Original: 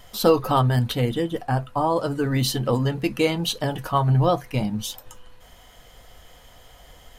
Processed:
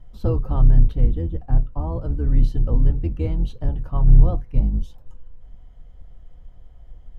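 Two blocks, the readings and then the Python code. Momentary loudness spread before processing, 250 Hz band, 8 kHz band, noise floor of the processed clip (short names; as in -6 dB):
7 LU, -4.5 dB, under -25 dB, -44 dBFS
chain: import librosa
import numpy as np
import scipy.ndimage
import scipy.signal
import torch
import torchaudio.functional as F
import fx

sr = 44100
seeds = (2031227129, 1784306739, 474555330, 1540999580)

y = fx.octave_divider(x, sr, octaves=2, level_db=3.0)
y = fx.tilt_eq(y, sr, slope=-4.5)
y = y * 10.0 ** (-15.0 / 20.0)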